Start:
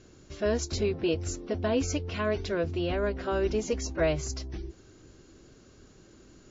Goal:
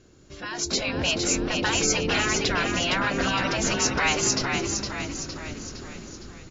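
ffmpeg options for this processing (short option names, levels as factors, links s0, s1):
-filter_complex "[0:a]afftfilt=real='re*lt(hypot(re,im),0.0891)':imag='im*lt(hypot(re,im),0.0891)':win_size=1024:overlap=0.75,dynaudnorm=f=190:g=7:m=5.62,asplit=2[s0][s1];[s1]asplit=7[s2][s3][s4][s5][s6][s7][s8];[s2]adelay=461,afreqshift=-54,volume=0.562[s9];[s3]adelay=922,afreqshift=-108,volume=0.292[s10];[s4]adelay=1383,afreqshift=-162,volume=0.151[s11];[s5]adelay=1844,afreqshift=-216,volume=0.0794[s12];[s6]adelay=2305,afreqshift=-270,volume=0.0412[s13];[s7]adelay=2766,afreqshift=-324,volume=0.0214[s14];[s8]adelay=3227,afreqshift=-378,volume=0.0111[s15];[s9][s10][s11][s12][s13][s14][s15]amix=inputs=7:normalize=0[s16];[s0][s16]amix=inputs=2:normalize=0,volume=0.891"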